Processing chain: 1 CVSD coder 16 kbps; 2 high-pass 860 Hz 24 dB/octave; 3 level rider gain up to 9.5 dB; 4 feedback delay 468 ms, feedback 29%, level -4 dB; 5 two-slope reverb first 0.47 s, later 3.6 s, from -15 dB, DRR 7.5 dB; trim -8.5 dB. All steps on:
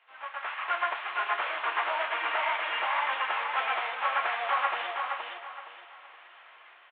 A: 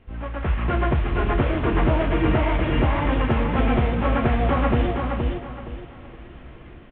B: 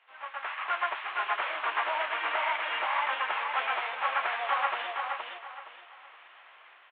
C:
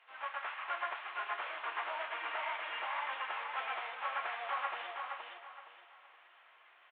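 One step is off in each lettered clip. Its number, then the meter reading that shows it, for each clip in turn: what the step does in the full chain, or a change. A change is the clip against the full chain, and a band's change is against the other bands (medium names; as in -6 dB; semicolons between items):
2, 500 Hz band +14.5 dB; 5, echo-to-direct -1.5 dB to -3.5 dB; 3, momentary loudness spread change -2 LU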